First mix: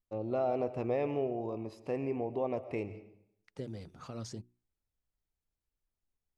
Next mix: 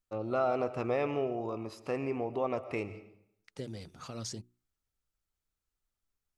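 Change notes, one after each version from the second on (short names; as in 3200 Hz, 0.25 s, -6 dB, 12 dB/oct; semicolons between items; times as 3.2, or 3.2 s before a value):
first voice: add bell 1300 Hz +12.5 dB 0.45 oct; master: add high shelf 2100 Hz +9 dB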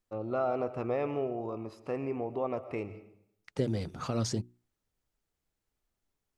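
second voice +11.0 dB; master: add high shelf 2100 Hz -9 dB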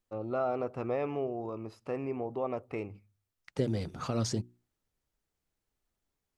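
reverb: off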